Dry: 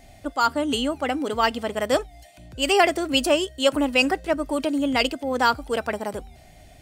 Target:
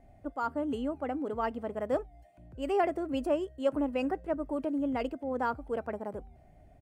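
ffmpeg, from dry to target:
-af "firequalizer=gain_entry='entry(450,0);entry(3700,-22);entry(9800,-18)':delay=0.05:min_phase=1,volume=-7.5dB"

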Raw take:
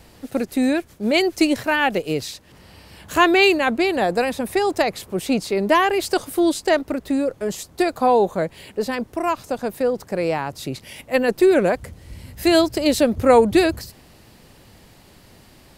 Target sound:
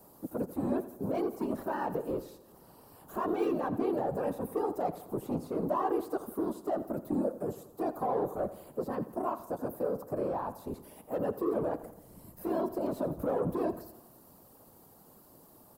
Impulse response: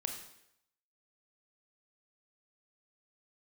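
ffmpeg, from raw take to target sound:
-filter_complex "[0:a]asoftclip=type=tanh:threshold=-17dB,highpass=170,acrossover=split=3100[a][b];[b]acompressor=threshold=-49dB:ratio=4:attack=1:release=60[c];[a][c]amix=inputs=2:normalize=0,firequalizer=gain_entry='entry(1100,0);entry(2000,-22);entry(13000,-9)':delay=0.05:min_phase=1,alimiter=limit=-18.5dB:level=0:latency=1,aemphasis=mode=production:type=75fm,afftfilt=real='hypot(re,im)*cos(2*PI*random(0))':imag='hypot(re,im)*sin(2*PI*random(1))':win_size=512:overlap=0.75,asplit=2[d][e];[e]aecho=0:1:85|170|255|340|425:0.178|0.0942|0.05|0.0265|0.014[f];[d][f]amix=inputs=2:normalize=0"

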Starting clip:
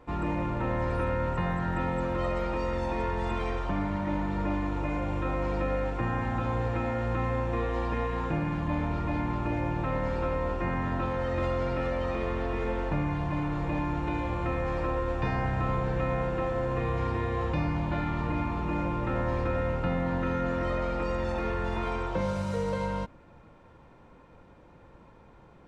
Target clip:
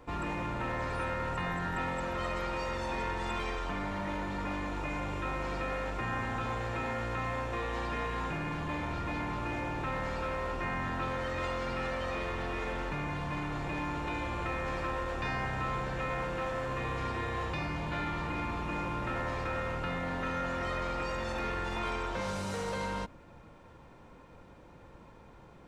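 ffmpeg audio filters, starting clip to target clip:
-filter_complex "[0:a]highshelf=f=4k:g=7,acrossover=split=990[a][b];[a]asoftclip=type=hard:threshold=-35.5dB[c];[c][b]amix=inputs=2:normalize=0"

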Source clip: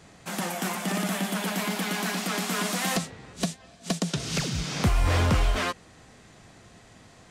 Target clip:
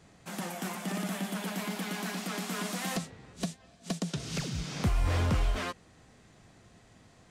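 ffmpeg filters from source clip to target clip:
-af "lowshelf=f=410:g=3.5,volume=-8dB"

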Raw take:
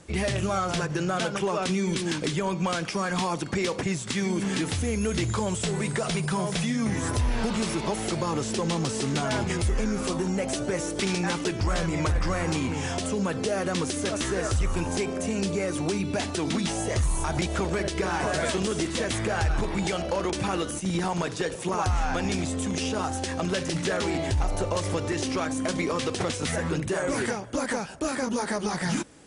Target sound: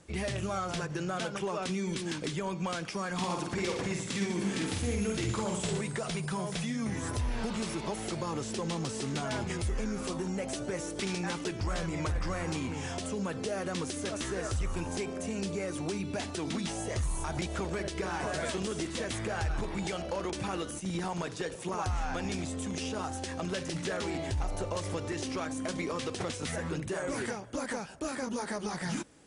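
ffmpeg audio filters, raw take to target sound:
-filter_complex "[0:a]asettb=1/sr,asplit=3[a][b][c];[a]atrim=end=3.164[d];[b]atrim=start=3.16:end=5.81,asetpts=PTS-STARTPTS,afade=t=in:d=0.004:c=qsin,afade=t=out:st=2.646:d=0.004:c=qsin,aecho=1:1:50|115|199.5|309.4|452.2:0.631|0.398|0.251|0.158|0.1,atrim=end_sample=116865[e];[c]atrim=start=5.806[f];[d][e]acrossfade=d=0.004:c1=hsin:c2=qsin[g];[g][f]acrossfade=d=0.004:c1=qsin:c2=hsin,volume=-7dB"

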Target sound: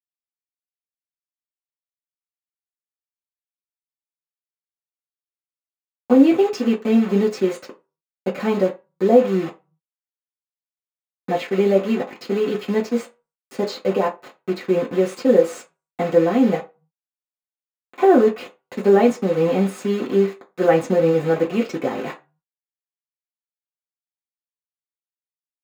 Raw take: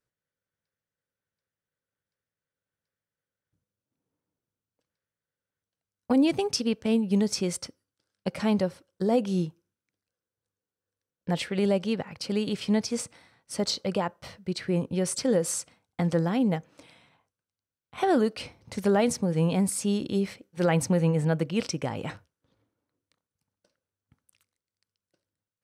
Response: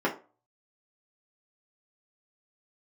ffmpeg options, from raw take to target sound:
-filter_complex "[0:a]asettb=1/sr,asplit=3[a][b][c];[a]atrim=end=16.574[d];[b]atrim=start=16.57:end=18.38,asetpts=PTS-STARTPTS,afade=t=in:d=0.004:c=qsin,afade=t=out:st=1.806:d=0.004:c=qsin,lowpass=2.8k[e];[c]atrim=start=18.376[f];[d][e]acrossfade=d=0.004:c1=hsin:c2=qsin[g];[g][f]acrossfade=d=0.004:c1=qsin:c2=hsin,acrusher=bits=5:mix=0:aa=0.000001[h];[1:a]atrim=start_sample=2205,asetrate=57330,aresample=44100[i];[h][i]afir=irnorm=-1:irlink=0,volume=-4.5dB"

